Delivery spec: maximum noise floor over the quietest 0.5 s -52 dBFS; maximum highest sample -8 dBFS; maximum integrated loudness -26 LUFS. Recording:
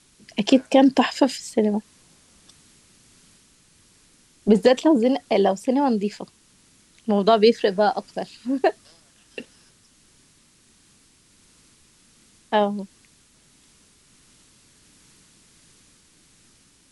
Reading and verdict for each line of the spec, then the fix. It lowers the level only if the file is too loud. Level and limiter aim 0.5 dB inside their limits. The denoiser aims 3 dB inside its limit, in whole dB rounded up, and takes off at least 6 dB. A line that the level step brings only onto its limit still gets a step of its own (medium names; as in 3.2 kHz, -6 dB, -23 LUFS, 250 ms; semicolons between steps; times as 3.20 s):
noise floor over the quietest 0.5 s -58 dBFS: pass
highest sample -4.5 dBFS: fail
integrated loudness -21.0 LUFS: fail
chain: trim -5.5 dB